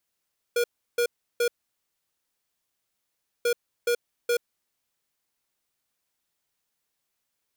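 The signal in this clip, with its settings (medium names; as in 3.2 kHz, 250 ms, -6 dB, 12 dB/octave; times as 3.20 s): beep pattern square 478 Hz, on 0.08 s, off 0.34 s, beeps 3, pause 1.97 s, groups 2, -23 dBFS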